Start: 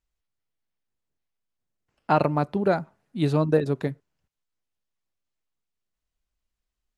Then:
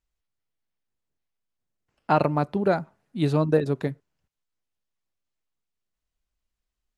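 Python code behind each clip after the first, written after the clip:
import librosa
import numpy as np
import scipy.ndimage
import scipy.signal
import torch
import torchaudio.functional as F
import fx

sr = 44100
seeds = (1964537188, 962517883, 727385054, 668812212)

y = x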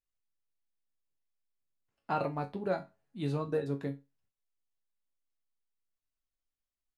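y = fx.resonator_bank(x, sr, root=42, chord='minor', decay_s=0.22)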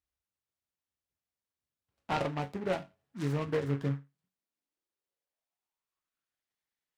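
y = fx.filter_sweep_highpass(x, sr, from_hz=63.0, to_hz=1900.0, start_s=3.31, end_s=6.47, q=4.2)
y = fx.noise_mod_delay(y, sr, seeds[0], noise_hz=1300.0, depth_ms=0.079)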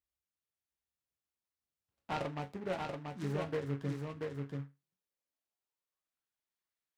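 y = x + 10.0 ** (-3.5 / 20.0) * np.pad(x, (int(684 * sr / 1000.0), 0))[:len(x)]
y = y * 10.0 ** (-5.5 / 20.0)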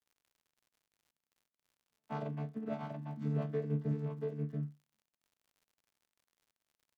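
y = fx.chord_vocoder(x, sr, chord='bare fifth', root=50)
y = fx.dmg_crackle(y, sr, seeds[1], per_s=84.0, level_db=-62.0)
y = y * 10.0 ** (2.5 / 20.0)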